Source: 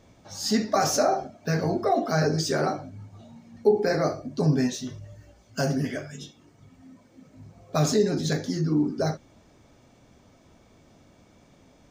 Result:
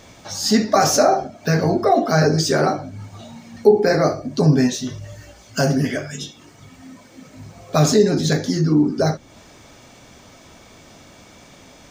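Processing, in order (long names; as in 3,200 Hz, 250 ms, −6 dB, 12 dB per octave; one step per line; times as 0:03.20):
one half of a high-frequency compander encoder only
level +7.5 dB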